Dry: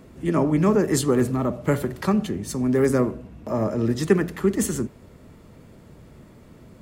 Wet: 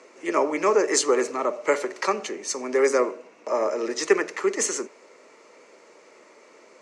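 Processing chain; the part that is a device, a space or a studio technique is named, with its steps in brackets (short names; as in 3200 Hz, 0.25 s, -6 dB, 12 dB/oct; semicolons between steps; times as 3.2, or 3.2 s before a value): phone speaker on a table (speaker cabinet 440–7500 Hz, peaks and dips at 710 Hz -6 dB, 1600 Hz -4 dB, 2200 Hz +5 dB, 3400 Hz -8 dB, 6100 Hz +6 dB); gain +5.5 dB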